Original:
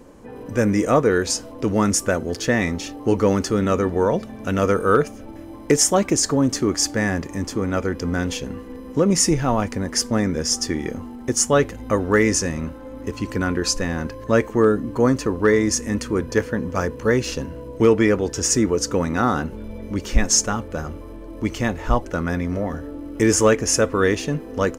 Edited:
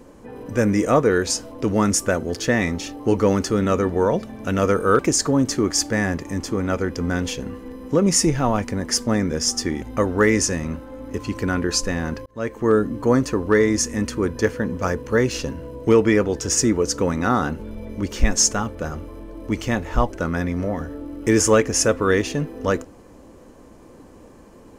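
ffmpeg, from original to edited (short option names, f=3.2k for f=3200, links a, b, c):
-filter_complex "[0:a]asplit=4[a][b][c][d];[a]atrim=end=4.992[e];[b]atrim=start=6.028:end=10.862[f];[c]atrim=start=11.748:end=14.19,asetpts=PTS-STARTPTS,afade=t=out:st=2.438:d=0.004:c=hsin[g];[d]atrim=start=14.19,asetpts=PTS-STARTPTS,afade=t=in:d=0.51[h];[e][f]acrossfade=d=0.004:c1=hsin:c2=hsin[i];[g][h]concat=n=2:v=0:a=1[j];[i][j]acrossfade=d=0.004:c1=hsin:c2=hsin"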